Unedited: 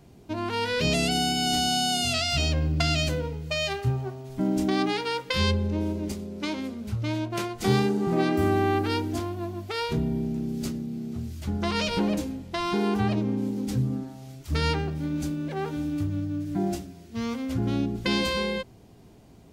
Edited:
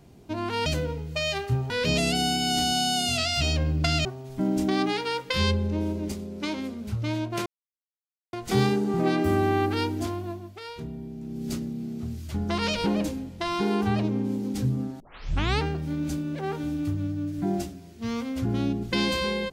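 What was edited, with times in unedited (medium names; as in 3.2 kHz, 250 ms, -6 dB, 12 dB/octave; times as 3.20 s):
3.01–4.05 s: move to 0.66 s
7.46 s: insert silence 0.87 s
9.37–10.63 s: dip -10 dB, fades 0.43 s quadratic
14.13 s: tape start 0.62 s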